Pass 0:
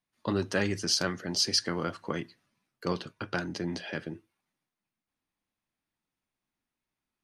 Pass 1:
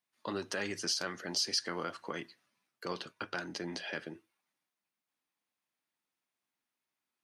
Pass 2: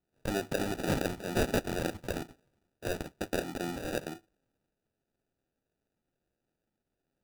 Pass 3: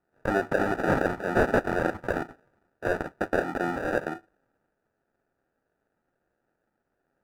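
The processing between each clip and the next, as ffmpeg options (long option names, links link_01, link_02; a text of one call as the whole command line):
ffmpeg -i in.wav -af "alimiter=limit=-21dB:level=0:latency=1:release=132,highpass=frequency=520:poles=1" out.wav
ffmpeg -i in.wav -af "acrusher=samples=41:mix=1:aa=0.000001,volume=4.5dB" out.wav
ffmpeg -i in.wav -filter_complex "[0:a]asplit=2[link_01][link_02];[link_02]highpass=frequency=720:poles=1,volume=8dB,asoftclip=type=tanh:threshold=-18dB[link_03];[link_01][link_03]amix=inputs=2:normalize=0,lowpass=frequency=4100:poles=1,volume=-6dB,highshelf=frequency=2200:width_type=q:width=1.5:gain=-11,volume=8dB" -ar 48000 -c:a libmp3lame -b:a 112k out.mp3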